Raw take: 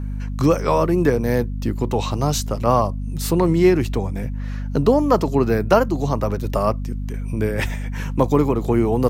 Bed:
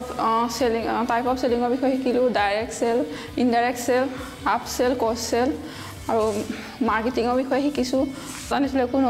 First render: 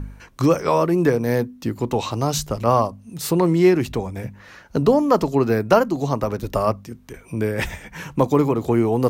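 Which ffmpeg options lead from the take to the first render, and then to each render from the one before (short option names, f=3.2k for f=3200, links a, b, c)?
-af "bandreject=f=50:t=h:w=4,bandreject=f=100:t=h:w=4,bandreject=f=150:t=h:w=4,bandreject=f=200:t=h:w=4,bandreject=f=250:t=h:w=4"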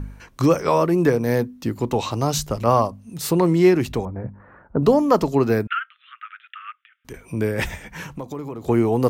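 -filter_complex "[0:a]asettb=1/sr,asplit=3[a][b][c];[a]atrim=end=4.054[d];[b]atrim=start=4.05:end=4.83,asetpts=PTS-STARTPTS,afade=t=in:d=0.004:c=qsin,afade=t=out:st=0.776:d=0.004:c=qsin,lowpass=f=1.4k:w=0.5412,lowpass=f=1.4k:w=1.3066[e];[c]atrim=start=4.826[f];[d][e]acrossfade=d=0.004:c1=hsin:c2=qsin[g];[g][f]acrossfade=d=0.004:c1=qsin:c2=hsin,asettb=1/sr,asplit=3[h][i][j];[h]atrim=end=5.674[k];[i]atrim=start=5.67:end=7.05,asetpts=PTS-STARTPTS,afade=t=in:d=0.004:c=qsin,afade=t=out:st=1.376:d=0.004:c=qsin,asuperpass=centerf=2100:order=20:qfactor=0.95[l];[j]atrim=start=7.046[m];[k][l]acrossfade=d=0.004:c1=hsin:c2=qsin[n];[n][m]acrossfade=d=0.004:c1=qsin:c2=hsin,asettb=1/sr,asplit=3[o][p][q];[o]atrim=end=8.064[r];[p]atrim=start=8.06:end=8.69,asetpts=PTS-STARTPTS,afade=t=in:d=0.004:c=qsin,afade=t=out:st=0.626:d=0.004:c=qsin,acompressor=threshold=-32dB:ratio=3:attack=3.2:release=140:knee=1:detection=peak[s];[q]atrim=start=8.686[t];[r][s]acrossfade=d=0.004:c1=hsin:c2=qsin[u];[u][t]acrossfade=d=0.004:c1=qsin:c2=hsin"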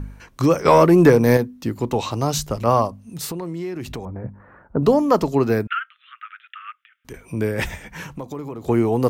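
-filter_complex "[0:a]asettb=1/sr,asplit=3[a][b][c];[a]atrim=end=0.654[d];[b]atrim=start=0.65:end=1.37,asetpts=PTS-STARTPTS,afade=t=in:d=0.004:c=qsin,afade=t=out:st=0.716:d=0.004:c=qsin,acontrast=74[e];[c]atrim=start=1.366[f];[d][e]acrossfade=d=0.004:c1=hsin:c2=qsin[g];[g][f]acrossfade=d=0.004:c1=qsin:c2=hsin,asettb=1/sr,asplit=3[h][i][j];[h]atrim=end=3.244[k];[i]atrim=start=3.24:end=4.23,asetpts=PTS-STARTPTS,afade=t=in:d=0.004:c=qsin,afade=t=out:st=0.986:d=0.004:c=qsin,acompressor=threshold=-26dB:ratio=6:attack=3.2:release=140:knee=1:detection=peak[l];[j]atrim=start=4.226[m];[k][l]acrossfade=d=0.004:c1=hsin:c2=qsin[n];[n][m]acrossfade=d=0.004:c1=qsin:c2=hsin"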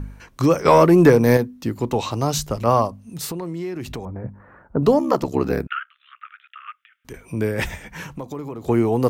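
-filter_complex "[0:a]asettb=1/sr,asplit=3[a][b][c];[a]atrim=end=4.984[d];[b]atrim=start=4.98:end=6.68,asetpts=PTS-STARTPTS,afade=t=in:d=0.004:c=qsin,afade=t=out:st=1.696:d=0.004:c=qsin,aeval=exprs='val(0)*sin(2*PI*34*n/s)':c=same[e];[c]atrim=start=6.676[f];[d][e]acrossfade=d=0.004:c1=hsin:c2=qsin[g];[g][f]acrossfade=d=0.004:c1=qsin:c2=hsin"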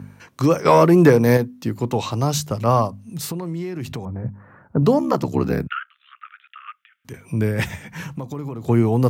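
-af "highpass=f=100:w=0.5412,highpass=f=100:w=1.3066,asubboost=boost=2.5:cutoff=210"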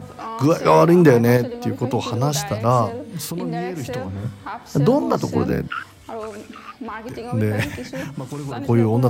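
-filter_complex "[1:a]volume=-9.5dB[a];[0:a][a]amix=inputs=2:normalize=0"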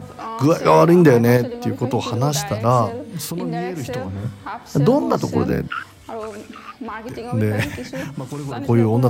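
-af "volume=1dB,alimiter=limit=-2dB:level=0:latency=1"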